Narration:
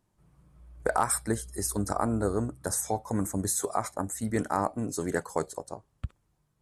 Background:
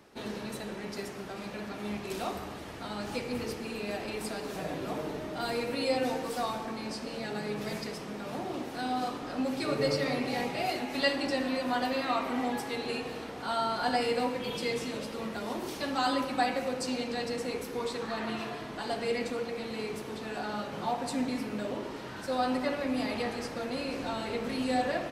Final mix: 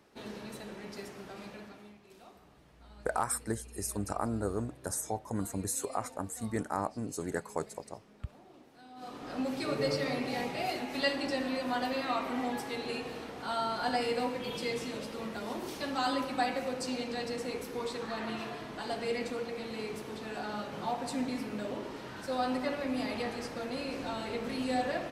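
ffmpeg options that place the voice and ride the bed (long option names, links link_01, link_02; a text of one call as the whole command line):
ffmpeg -i stem1.wav -i stem2.wav -filter_complex "[0:a]adelay=2200,volume=-5.5dB[link_01];[1:a]volume=12.5dB,afade=type=out:start_time=1.43:duration=0.51:silence=0.177828,afade=type=in:start_time=8.95:duration=0.4:silence=0.125893[link_02];[link_01][link_02]amix=inputs=2:normalize=0" out.wav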